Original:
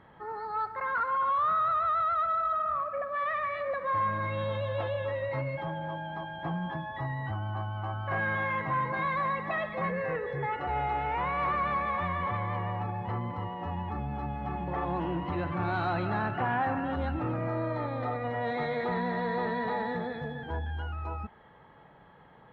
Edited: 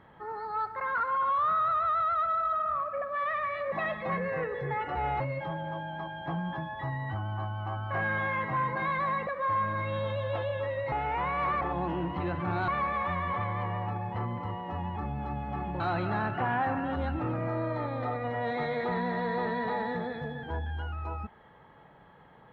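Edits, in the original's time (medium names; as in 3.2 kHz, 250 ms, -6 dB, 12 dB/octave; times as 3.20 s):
3.72–5.37 s: swap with 9.44–10.92 s
14.73–15.80 s: move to 11.61 s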